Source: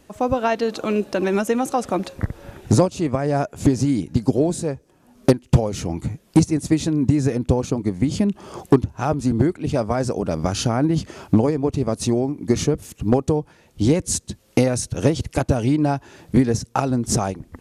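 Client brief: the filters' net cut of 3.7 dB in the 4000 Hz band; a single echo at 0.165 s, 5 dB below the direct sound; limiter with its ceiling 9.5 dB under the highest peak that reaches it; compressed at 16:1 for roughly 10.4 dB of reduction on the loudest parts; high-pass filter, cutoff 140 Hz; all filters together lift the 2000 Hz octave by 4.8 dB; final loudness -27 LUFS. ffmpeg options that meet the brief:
-af "highpass=140,equalizer=f=2k:t=o:g=8,equalizer=f=4k:t=o:g=-7.5,acompressor=threshold=-19dB:ratio=16,alimiter=limit=-15.5dB:level=0:latency=1,aecho=1:1:165:0.562"

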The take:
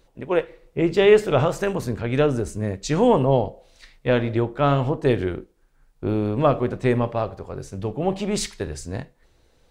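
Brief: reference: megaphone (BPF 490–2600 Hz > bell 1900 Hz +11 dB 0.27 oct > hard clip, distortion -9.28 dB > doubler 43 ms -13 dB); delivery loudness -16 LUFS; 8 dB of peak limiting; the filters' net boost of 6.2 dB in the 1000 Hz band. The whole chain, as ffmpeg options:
-filter_complex "[0:a]equalizer=f=1k:t=o:g=8.5,alimiter=limit=-10dB:level=0:latency=1,highpass=490,lowpass=2.6k,equalizer=f=1.9k:t=o:w=0.27:g=11,asoftclip=type=hard:threshold=-20dB,asplit=2[a][b];[b]adelay=43,volume=-13dB[c];[a][c]amix=inputs=2:normalize=0,volume=12dB"

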